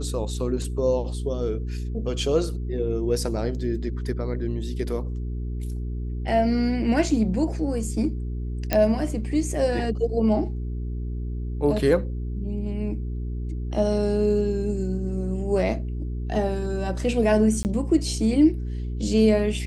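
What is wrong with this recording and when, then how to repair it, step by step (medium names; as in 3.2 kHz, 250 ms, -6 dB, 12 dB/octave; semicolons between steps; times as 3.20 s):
hum 60 Hz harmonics 7 -29 dBFS
8.73 s: pop -7 dBFS
17.63–17.65 s: dropout 19 ms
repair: de-click; de-hum 60 Hz, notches 7; interpolate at 17.63 s, 19 ms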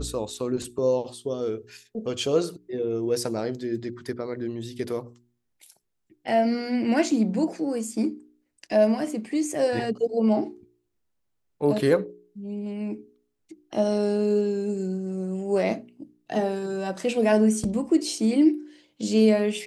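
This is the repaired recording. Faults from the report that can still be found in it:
nothing left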